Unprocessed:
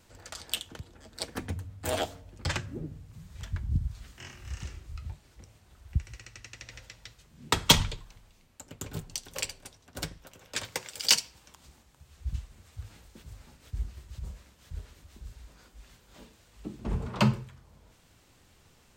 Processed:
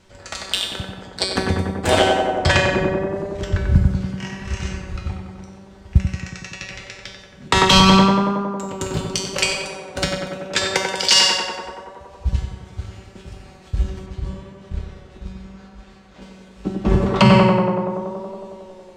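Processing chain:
mu-law and A-law mismatch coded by A
high-frequency loss of the air 69 metres
tuned comb filter 190 Hz, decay 0.75 s, harmonics all, mix 90%
0:14.06–0:16.22: high-shelf EQ 4,700 Hz −8.5 dB
tape delay 93 ms, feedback 90%, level −3 dB, low-pass 1,800 Hz
boost into a limiter +33.5 dB
level −1 dB

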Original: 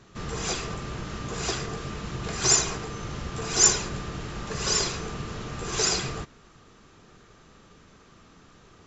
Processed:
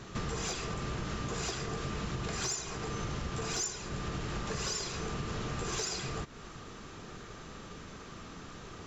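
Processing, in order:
downward compressor 16 to 1, threshold −39 dBFS, peak gain reduction 26 dB
soft clipping −28.5 dBFS, distortion −30 dB
level +7 dB

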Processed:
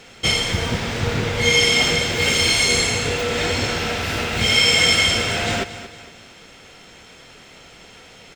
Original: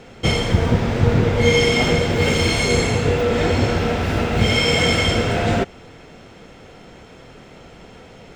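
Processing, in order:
tilt shelving filter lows −7.5 dB, about 1,400 Hz
on a send: repeating echo 229 ms, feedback 39%, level −13.5 dB

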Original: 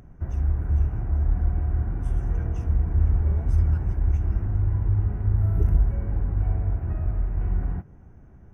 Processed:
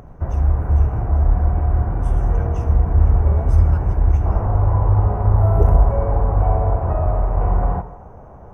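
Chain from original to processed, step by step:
flat-topped bell 740 Hz +8.5 dB, from 0:04.25 +15.5 dB
convolution reverb RT60 0.85 s, pre-delay 70 ms, DRR 14 dB
level +6.5 dB

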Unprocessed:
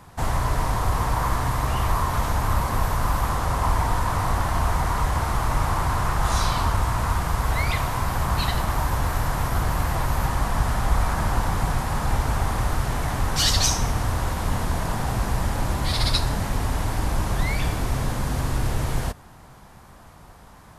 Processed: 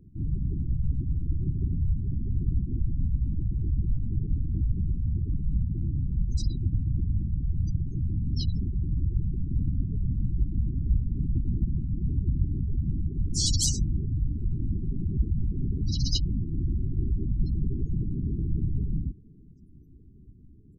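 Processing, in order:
linear-phase brick-wall band-stop 360–3,800 Hz
pitch-shifted copies added −5 semitones −7 dB, +4 semitones 0 dB, +7 semitones −8 dB
gate on every frequency bin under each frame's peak −20 dB strong
level −6 dB

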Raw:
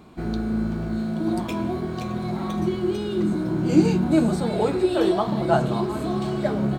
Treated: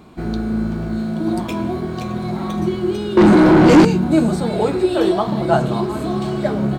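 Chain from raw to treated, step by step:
0:03.17–0:03.85: mid-hump overdrive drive 31 dB, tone 1,800 Hz, clips at −5 dBFS
level +4 dB

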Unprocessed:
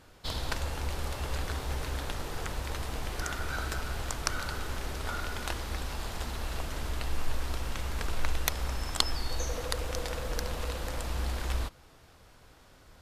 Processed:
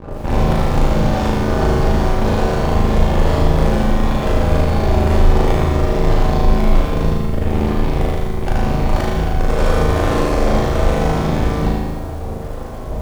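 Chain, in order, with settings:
Butterworth low-pass 910 Hz 72 dB per octave
low-shelf EQ 180 Hz +5.5 dB
downward compressor, threshold −26 dBFS, peak gain reduction 10 dB
fuzz pedal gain 47 dB, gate −54 dBFS
flutter between parallel walls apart 6.4 metres, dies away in 0.94 s
on a send at −4 dB: convolution reverb, pre-delay 3 ms
on the sum: feedback echo at a low word length 88 ms, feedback 55%, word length 6 bits, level −6 dB
level −4 dB

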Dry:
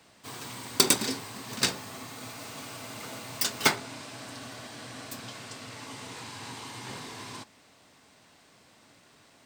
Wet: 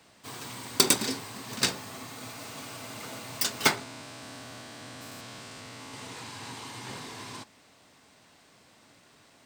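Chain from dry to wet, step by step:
0:03.83–0:05.94: spectrum averaged block by block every 200 ms

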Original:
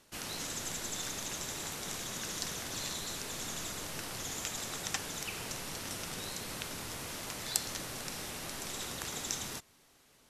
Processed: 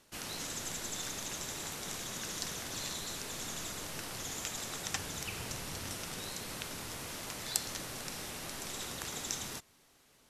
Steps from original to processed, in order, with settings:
0:04.93–0:05.92: parametric band 76 Hz +8 dB 1.6 octaves
level −1 dB

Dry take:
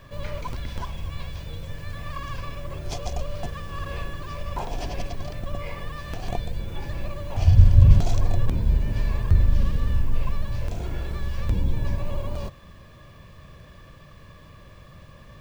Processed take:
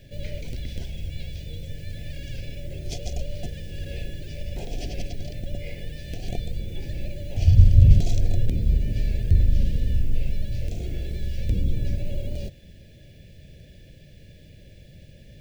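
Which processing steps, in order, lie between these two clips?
Butterworth band-reject 1,100 Hz, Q 0.69

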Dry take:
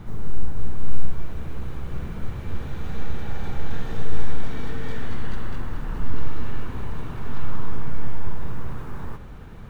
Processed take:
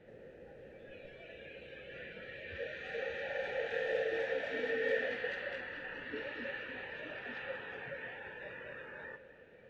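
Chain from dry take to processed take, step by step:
noise reduction from a noise print of the clip's start 13 dB
formant filter e
feedback echo with a high-pass in the loop 255 ms, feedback 57%, level −16 dB
level +14.5 dB

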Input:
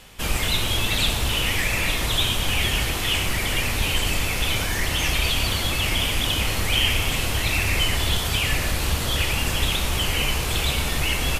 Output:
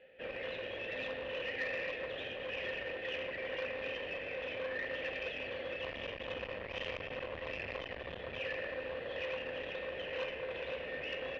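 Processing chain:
0:05.83–0:08.39: low-shelf EQ 140 Hz +11 dB
formant filter e
high-frequency loss of the air 470 metres
tuned comb filter 260 Hz, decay 1.2 s, mix 80%
saturating transformer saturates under 1,200 Hz
level +15.5 dB

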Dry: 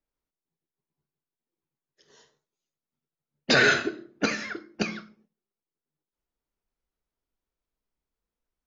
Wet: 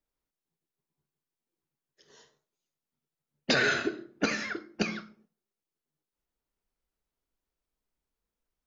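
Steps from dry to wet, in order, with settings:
downward compressor, threshold −22 dBFS, peak gain reduction 6.5 dB
on a send: feedback echo with a band-pass in the loop 60 ms, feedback 45%, band-pass 780 Hz, level −20 dB

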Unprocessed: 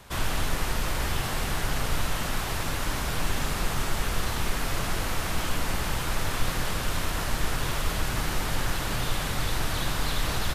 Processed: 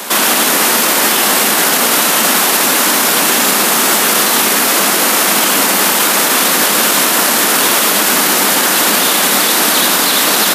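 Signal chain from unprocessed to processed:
Butterworth high-pass 200 Hz 48 dB per octave
high-shelf EQ 7,500 Hz +12 dB
boost into a limiter +26 dB
level −1 dB

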